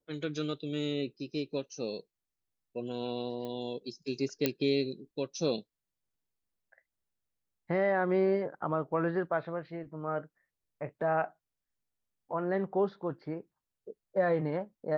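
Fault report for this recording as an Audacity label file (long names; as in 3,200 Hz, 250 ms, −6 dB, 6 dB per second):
3.450000	3.450000	click −28 dBFS
4.460000	4.460000	click −12 dBFS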